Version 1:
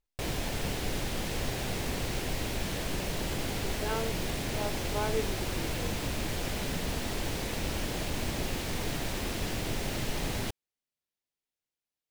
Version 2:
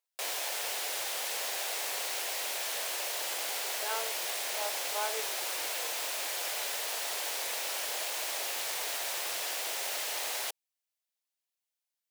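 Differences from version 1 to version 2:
background: add high-shelf EQ 5,500 Hz +8.5 dB
master: add high-pass filter 570 Hz 24 dB per octave

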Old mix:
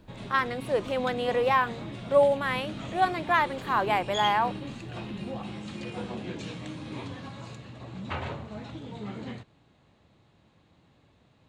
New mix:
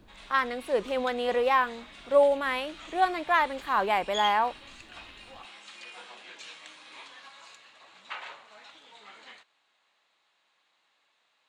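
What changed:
background: add high-pass filter 1,200 Hz 12 dB per octave
master: add parametric band 69 Hz −4.5 dB 1.4 octaves

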